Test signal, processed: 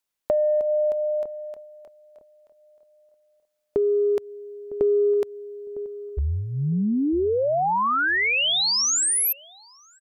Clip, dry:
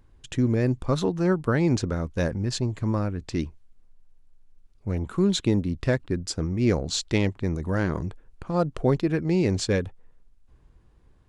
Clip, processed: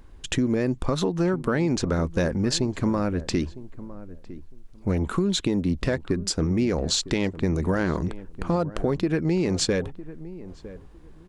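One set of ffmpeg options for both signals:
ffmpeg -i in.wav -filter_complex "[0:a]equalizer=frequency=110:width=2.9:gain=-11,acontrast=48,alimiter=limit=-14.5dB:level=0:latency=1:release=296,acompressor=threshold=-23dB:ratio=6,asplit=2[link_01][link_02];[link_02]adelay=956,lowpass=frequency=930:poles=1,volume=-15.5dB,asplit=2[link_03][link_04];[link_04]adelay=956,lowpass=frequency=930:poles=1,volume=0.2[link_05];[link_03][link_05]amix=inputs=2:normalize=0[link_06];[link_01][link_06]amix=inputs=2:normalize=0,volume=3.5dB" out.wav

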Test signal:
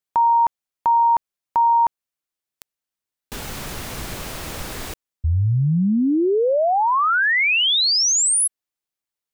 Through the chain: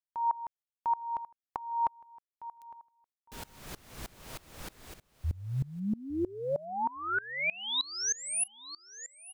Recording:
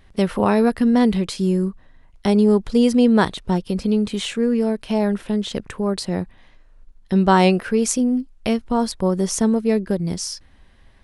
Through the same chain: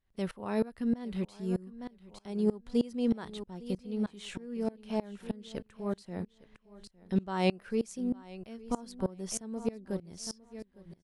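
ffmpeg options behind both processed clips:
ffmpeg -i in.wav -af "aecho=1:1:858|1716|2574:0.188|0.0565|0.017,aeval=exprs='val(0)*pow(10,-24*if(lt(mod(-3.2*n/s,1),2*abs(-3.2)/1000),1-mod(-3.2*n/s,1)/(2*abs(-3.2)/1000),(mod(-3.2*n/s,1)-2*abs(-3.2)/1000)/(1-2*abs(-3.2)/1000))/20)':channel_layout=same,volume=-8.5dB" out.wav

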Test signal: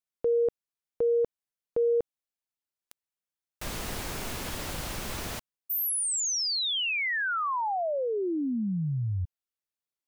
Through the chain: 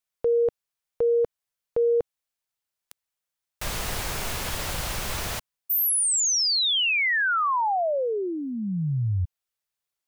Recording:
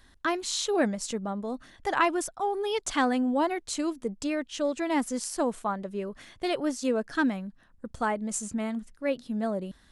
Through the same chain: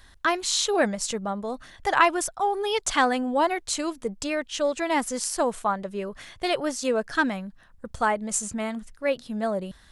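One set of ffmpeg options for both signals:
ffmpeg -i in.wav -af "equalizer=frequency=270:width=1.2:gain=-8,volume=6dB" out.wav

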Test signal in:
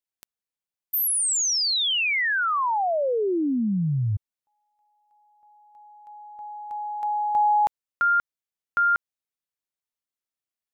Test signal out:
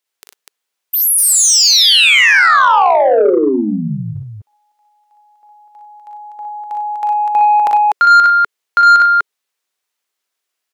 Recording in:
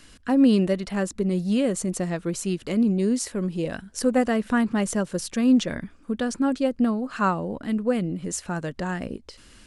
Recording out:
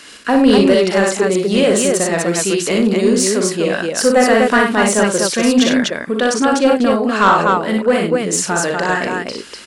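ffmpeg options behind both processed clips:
ffmpeg -i in.wav -filter_complex "[0:a]highpass=frequency=210:poles=1,equalizer=frequency=420:width=3.9:gain=4.5,aecho=1:1:41|60|95|100|247:0.422|0.631|0.251|0.141|0.668,asplit=2[link_01][link_02];[link_02]highpass=frequency=720:poles=1,volume=11dB,asoftclip=type=tanh:threshold=-6.5dB[link_03];[link_01][link_03]amix=inputs=2:normalize=0,lowpass=frequency=7400:poles=1,volume=-6dB,acontrast=65,volume=1.5dB" out.wav

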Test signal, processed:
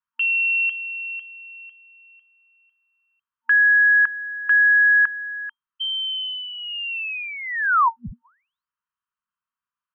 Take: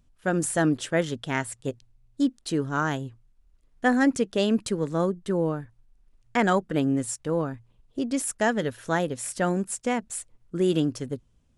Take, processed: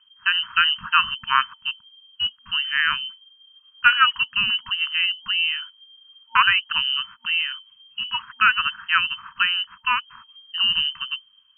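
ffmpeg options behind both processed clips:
ffmpeg -i in.wav -af "equalizer=frequency=250:width_type=o:width=1:gain=-9,equalizer=frequency=1000:width_type=o:width=1:gain=-10,equalizer=frequency=2000:width_type=o:width=1:gain=11,lowpass=frequency=2700:width_type=q:width=0.5098,lowpass=frequency=2700:width_type=q:width=0.6013,lowpass=frequency=2700:width_type=q:width=0.9,lowpass=frequency=2700:width_type=q:width=2.563,afreqshift=-3200,afftfilt=real='re*(1-between(b*sr/4096,240,910))':imag='im*(1-between(b*sr/4096,240,910))':win_size=4096:overlap=0.75,volume=6.5dB" out.wav

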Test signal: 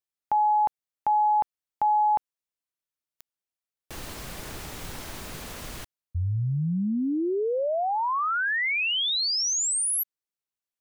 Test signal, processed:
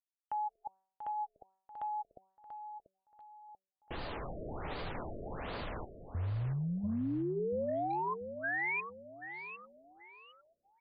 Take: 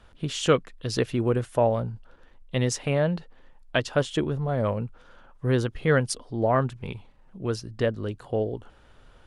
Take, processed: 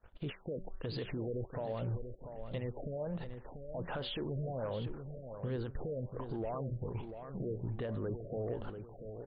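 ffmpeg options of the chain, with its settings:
ffmpeg -i in.wav -filter_complex "[0:a]agate=range=-33dB:threshold=-44dB:ratio=3:release=42:detection=peak,aphaser=in_gain=1:out_gain=1:delay=2.6:decay=0.21:speed=1.8:type=triangular,equalizer=frequency=650:width_type=o:width=1.9:gain=6.5,acompressor=threshold=-35dB:ratio=3:attack=0.19:release=82:detection=peak,alimiter=level_in=13dB:limit=-24dB:level=0:latency=1:release=38,volume=-13dB,bandreject=frequency=190.6:width_type=h:width=4,bandreject=frequency=381.2:width_type=h:width=4,bandreject=frequency=571.8:width_type=h:width=4,bandreject=frequency=762.4:width_type=h:width=4,bandreject=frequency=953:width_type=h:width=4,bandreject=frequency=1143.6:width_type=h:width=4,bandreject=frequency=1334.2:width_type=h:width=4,bandreject=frequency=1524.8:width_type=h:width=4,bandreject=frequency=1715.4:width_type=h:width=4,bandreject=frequency=1906:width_type=h:width=4,asoftclip=type=hard:threshold=-37dB,asplit=2[link_01][link_02];[link_02]adelay=688,lowpass=frequency=2400:poles=1,volume=-8.5dB,asplit=2[link_03][link_04];[link_04]adelay=688,lowpass=frequency=2400:poles=1,volume=0.38,asplit=2[link_05][link_06];[link_06]adelay=688,lowpass=frequency=2400:poles=1,volume=0.38,asplit=2[link_07][link_08];[link_08]adelay=688,lowpass=frequency=2400:poles=1,volume=0.38[link_09];[link_03][link_05][link_07][link_09]amix=inputs=4:normalize=0[link_10];[link_01][link_10]amix=inputs=2:normalize=0,afftfilt=real='re*lt(b*sr/1024,650*pow(5000/650,0.5+0.5*sin(2*PI*1.3*pts/sr)))':imag='im*lt(b*sr/1024,650*pow(5000/650,0.5+0.5*sin(2*PI*1.3*pts/sr)))':win_size=1024:overlap=0.75,volume=5.5dB" out.wav

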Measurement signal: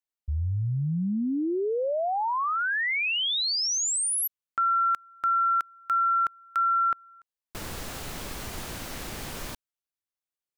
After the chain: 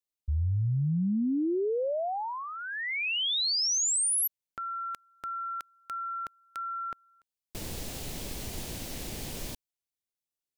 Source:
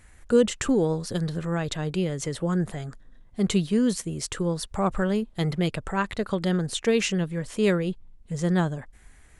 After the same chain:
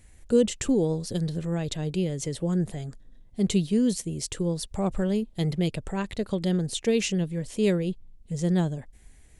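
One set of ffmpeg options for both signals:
ffmpeg -i in.wav -af "equalizer=frequency=1300:width=1.1:gain=-12" out.wav

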